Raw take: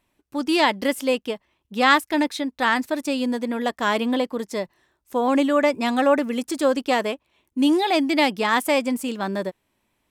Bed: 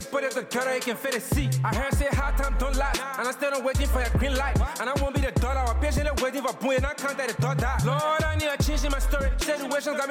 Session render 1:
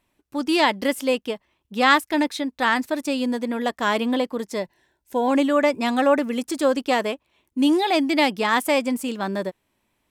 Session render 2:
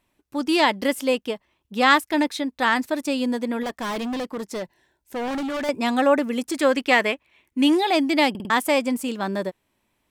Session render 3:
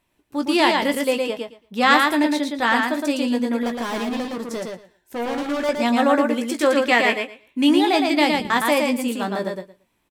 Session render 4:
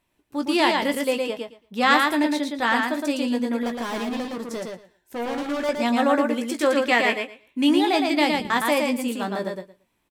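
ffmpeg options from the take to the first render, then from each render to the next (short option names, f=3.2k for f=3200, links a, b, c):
-filter_complex "[0:a]asettb=1/sr,asplit=3[a][b][c];[a]atrim=end=4.624[d];[b]atrim=start=4.62:end=5.31,asetpts=PTS-STARTPTS,afade=t=in:d=0.004:c=qsin,afade=t=out:st=0.686:d=0.004:c=qsin,asuperstop=centerf=1200:order=8:qfactor=4.1[e];[c]atrim=start=5.306[f];[d][e]acrossfade=d=0.004:c1=hsin:c2=qsin[g];[g][f]acrossfade=d=0.004:c1=qsin:c2=hsin"
-filter_complex "[0:a]asettb=1/sr,asplit=3[a][b][c];[a]atrim=end=3.634[d];[b]atrim=start=3.63:end=5.69,asetpts=PTS-STARTPTS,afade=t=in:d=0.004:c=qsin,afade=t=out:st=2.056:d=0.004:c=qsin,asoftclip=type=hard:threshold=-25.5dB[e];[c]atrim=start=5.686[f];[d][e]acrossfade=d=0.004:c1=hsin:c2=qsin[g];[g][f]acrossfade=d=0.004:c1=qsin:c2=hsin,asettb=1/sr,asplit=3[h][i][j];[h]atrim=end=6.544[k];[i]atrim=start=6.54:end=7.75,asetpts=PTS-STARTPTS,afade=t=in:d=0.004:c=qsin,afade=t=out:st=1.206:d=0.004:c=qsin,equalizer=f=2.1k:w=1.6:g=10.5[l];[j]atrim=start=7.746[m];[k][l]acrossfade=d=0.004:c1=hsin:c2=qsin[n];[n][m]acrossfade=d=0.004:c1=qsin:c2=hsin,asplit=5[o][p][q][r][s];[o]atrim=end=8.352[t];[p]atrim=start=8.298:end=8.352[u];[q]atrim=start=8.298:end=8.352[v];[r]atrim=start=8.298:end=8.352[w];[s]atrim=start=8.498[x];[t][u]acrossfade=d=0.004:c1=hsin:c2=hsin[y];[y][v]acrossfade=d=0.004:c1=hsin:c2=hsin[z];[z][w]acrossfade=d=0.004:c1=hsin:c2=hsin[aa];[aa][x]acrossfade=d=0.004:c1=hsin:c2=hsin"
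-filter_complex "[0:a]asplit=2[a][b];[b]adelay=17,volume=-8.5dB[c];[a][c]amix=inputs=2:normalize=0,asplit=2[d][e];[e]aecho=0:1:114|228|342:0.668|0.107|0.0171[f];[d][f]amix=inputs=2:normalize=0"
-af "volume=-2.5dB"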